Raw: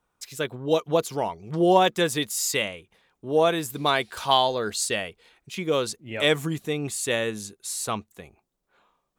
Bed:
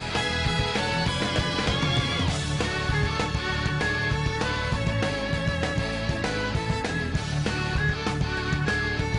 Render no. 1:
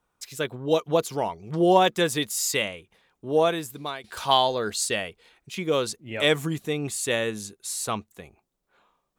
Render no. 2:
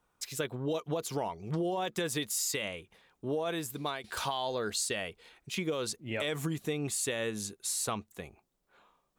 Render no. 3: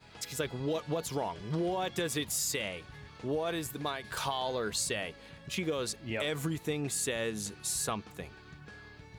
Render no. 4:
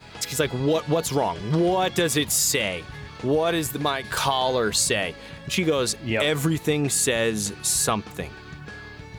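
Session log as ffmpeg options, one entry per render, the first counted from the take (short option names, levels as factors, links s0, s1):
-filter_complex "[0:a]asplit=2[s0][s1];[s0]atrim=end=4.04,asetpts=PTS-STARTPTS,afade=t=out:st=3.36:d=0.68:silence=0.11885[s2];[s1]atrim=start=4.04,asetpts=PTS-STARTPTS,afade=t=in:d=0.004:c=hsin:silence=0.11885[s3];[s2][s3]concat=n=2:v=0:a=1"
-af "alimiter=limit=0.15:level=0:latency=1:release=37,acompressor=threshold=0.0316:ratio=5"
-filter_complex "[1:a]volume=0.0562[s0];[0:a][s0]amix=inputs=2:normalize=0"
-af "volume=3.55"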